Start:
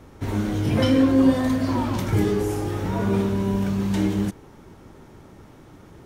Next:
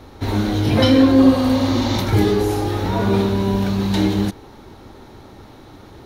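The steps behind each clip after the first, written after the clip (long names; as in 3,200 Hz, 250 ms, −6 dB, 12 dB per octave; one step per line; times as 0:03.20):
healed spectral selection 0:01.27–0:01.96, 480–7,300 Hz both
thirty-one-band graphic EQ 160 Hz −9 dB, 800 Hz +4 dB, 4,000 Hz +11 dB, 8,000 Hz −7 dB
level +5.5 dB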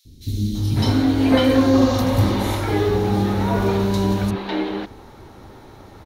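three-band delay without the direct sound highs, lows, mids 50/550 ms, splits 270/3,800 Hz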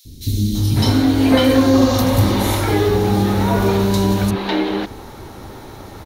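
high-shelf EQ 6,300 Hz +8 dB
in parallel at +2 dB: downward compressor, threshold −25 dBFS, peak gain reduction 14 dB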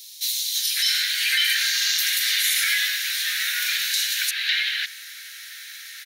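Butterworth high-pass 1,600 Hz 72 dB per octave
brickwall limiter −19 dBFS, peak gain reduction 8.5 dB
level +8 dB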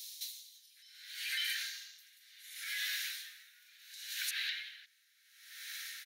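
downward compressor, threshold −28 dBFS, peak gain reduction 10.5 dB
tremolo with a sine in dB 0.69 Hz, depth 27 dB
level −5 dB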